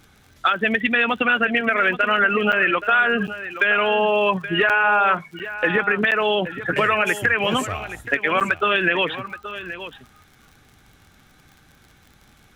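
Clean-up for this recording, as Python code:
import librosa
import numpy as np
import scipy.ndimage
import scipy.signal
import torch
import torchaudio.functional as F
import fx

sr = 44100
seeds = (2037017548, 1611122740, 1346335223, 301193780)

y = fx.fix_declick_ar(x, sr, threshold=6.5)
y = fx.fix_interpolate(y, sr, at_s=(2.52, 3.27, 4.69, 5.39, 6.11, 8.4), length_ms=7.7)
y = fx.fix_echo_inverse(y, sr, delay_ms=825, level_db=-13.0)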